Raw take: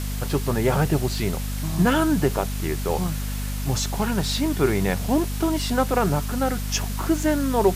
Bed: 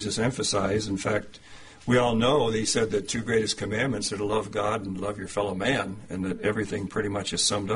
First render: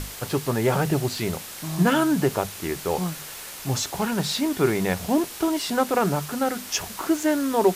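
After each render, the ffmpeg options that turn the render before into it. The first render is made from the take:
-af "bandreject=f=50:t=h:w=6,bandreject=f=100:t=h:w=6,bandreject=f=150:t=h:w=6,bandreject=f=200:t=h:w=6,bandreject=f=250:t=h:w=6"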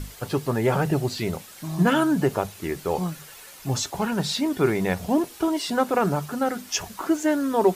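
-af "afftdn=nr=9:nf=-38"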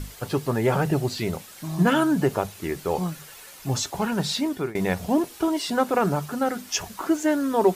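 -filter_complex "[0:a]asplit=2[s0][s1];[s0]atrim=end=4.75,asetpts=PTS-STARTPTS,afade=t=out:st=4.31:d=0.44:c=qsin:silence=0.0891251[s2];[s1]atrim=start=4.75,asetpts=PTS-STARTPTS,afade=t=in:d=0.004:c=hsin:silence=0.0891251[s3];[s2][s3]concat=n=2:v=0:a=1"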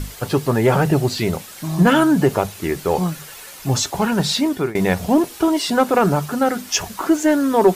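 -af "acontrast=76"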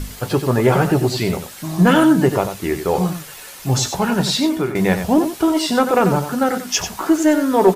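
-filter_complex "[0:a]asplit=2[s0][s1];[s1]adelay=16,volume=0.282[s2];[s0][s2]amix=inputs=2:normalize=0,asplit=2[s3][s4];[s4]aecho=0:1:92:0.355[s5];[s3][s5]amix=inputs=2:normalize=0"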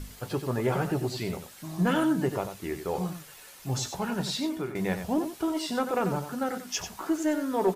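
-af "volume=0.237"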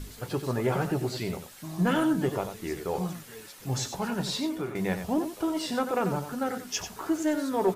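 -filter_complex "[1:a]volume=0.0668[s0];[0:a][s0]amix=inputs=2:normalize=0"

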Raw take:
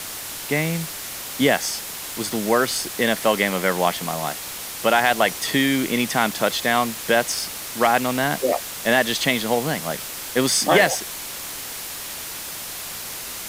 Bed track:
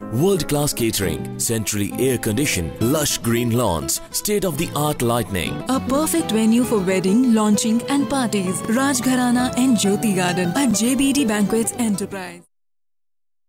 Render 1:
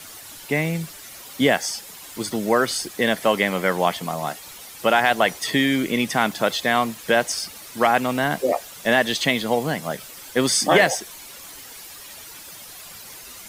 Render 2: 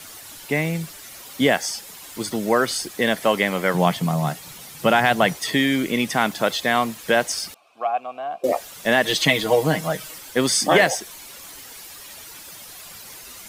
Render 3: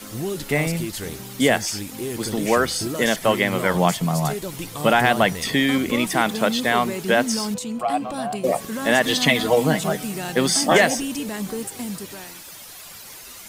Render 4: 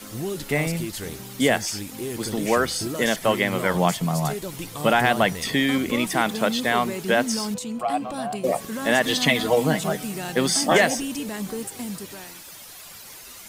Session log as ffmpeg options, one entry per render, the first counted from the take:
-af "afftdn=nr=11:nf=-33"
-filter_complex "[0:a]asettb=1/sr,asplit=3[s0][s1][s2];[s0]atrim=end=3.744[s3];[s1]atrim=start=3.74:end=5.35,asetpts=PTS-STARTPTS,afade=t=in:d=0.004:c=qsin,afade=t=out:st=1.606:d=0.004:c=qsin,equalizer=f=150:w=1.5:g=13.5[s4];[s2]atrim=start=5.346[s5];[s3][s4]acrossfade=d=0.004:c1=hsin:c2=qsin[s6];[s6][s5]acrossfade=d=0.004:c1=qsin:c2=hsin,asettb=1/sr,asplit=3[s7][s8][s9];[s7]atrim=end=7.544[s10];[s8]atrim=start=7.54:end=8.44,asetpts=PTS-STARTPTS,afade=t=in:d=0.004:c=qsin,afade=t=out:st=0.896:d=0.004:c=qsin,asplit=3[s11][s12][s13];[s11]bandpass=f=730:t=q:w=8,volume=1[s14];[s12]bandpass=f=1090:t=q:w=8,volume=0.501[s15];[s13]bandpass=f=2440:t=q:w=8,volume=0.355[s16];[s14][s15][s16]amix=inputs=3:normalize=0[s17];[s9]atrim=start=8.436[s18];[s10][s17]acrossfade=d=0.004:c1=hsin:c2=qsin[s19];[s19][s18]acrossfade=d=0.004:c1=qsin:c2=hsin,asettb=1/sr,asplit=3[s20][s21][s22];[s20]atrim=end=9.034[s23];[s21]atrim=start=9.03:end=10.18,asetpts=PTS-STARTPTS,afade=t=in:d=0.004:c=qsin,afade=t=out:st=1.146:d=0.004:c=qsin,aecho=1:1:6.4:0.95,atrim=end_sample=50715[s24];[s22]atrim=start=10.176[s25];[s23][s24]acrossfade=d=0.004:c1=hsin:c2=qsin[s26];[s26][s25]acrossfade=d=0.004:c1=qsin:c2=hsin"
-filter_complex "[1:a]volume=0.299[s0];[0:a][s0]amix=inputs=2:normalize=0"
-af "volume=0.794"

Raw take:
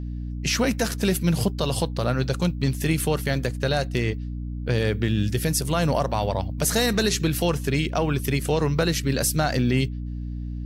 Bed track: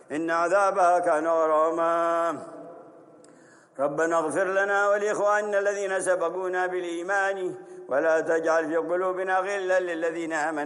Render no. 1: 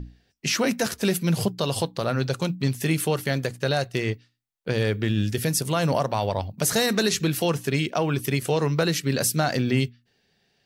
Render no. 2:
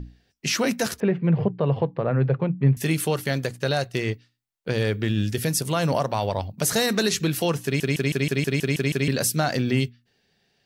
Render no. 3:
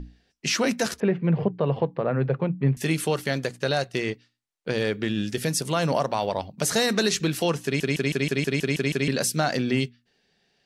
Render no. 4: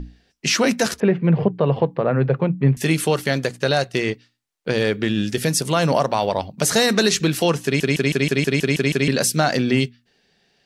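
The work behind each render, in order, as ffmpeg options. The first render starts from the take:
-af "bandreject=f=60:t=h:w=6,bandreject=f=120:t=h:w=6,bandreject=f=180:t=h:w=6,bandreject=f=240:t=h:w=6,bandreject=f=300:t=h:w=6"
-filter_complex "[0:a]asettb=1/sr,asplit=3[s0][s1][s2];[s0]atrim=end=1.004[s3];[s1]atrim=start=1:end=2.77,asetpts=PTS-STARTPTS,afade=t=in:d=0.004:c=qsin,afade=t=out:st=1.766:d=0.004:c=qsin,highpass=100,equalizer=f=140:t=q:w=4:g=9,equalizer=f=460:t=q:w=4:g=5,equalizer=f=1400:t=q:w=4:g=-5,lowpass=f=2100:w=0.5412,lowpass=f=2100:w=1.3066[s4];[s2]atrim=start=2.766[s5];[s3][s4]acrossfade=d=0.004:c1=hsin:c2=qsin[s6];[s6][s5]acrossfade=d=0.004:c1=qsin:c2=hsin,asplit=10[s7][s8][s9][s10][s11][s12][s13][s14][s15][s16];[s7]atrim=end=7.802[s17];[s8]atrim=start=7.638:end=7.802[s18];[s9]atrim=start=7.638:end=7.802[s19];[s10]atrim=start=7.638:end=7.802[s20];[s11]atrim=start=7.638:end=7.802[s21];[s12]atrim=start=7.638:end=7.802[s22];[s13]atrim=start=7.638:end=7.802[s23];[s14]atrim=start=7.638:end=7.802[s24];[s15]atrim=start=7.638:end=7.802[s25];[s16]atrim=start=9.078[s26];[s17][s18]acrossfade=d=0.004:c1=hsin:c2=hsin[s27];[s27][s19]acrossfade=d=0.004:c1=hsin:c2=hsin[s28];[s28][s20]acrossfade=d=0.004:c1=hsin:c2=hsin[s29];[s29][s21]acrossfade=d=0.004:c1=hsin:c2=hsin[s30];[s30][s22]acrossfade=d=0.004:c1=hsin:c2=hsin[s31];[s31][s23]acrossfade=d=0.004:c1=hsin:c2=hsin[s32];[s32][s24]acrossfade=d=0.004:c1=hsin:c2=hsin[s33];[s33][s25]acrossfade=d=0.004:c1=hsin:c2=hsin[s34];[s34][s26]acrossfade=d=0.004:c1=hsin:c2=hsin"
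-af "lowpass=9700,equalizer=f=100:t=o:w=0.63:g=-11.5"
-af "volume=1.88"

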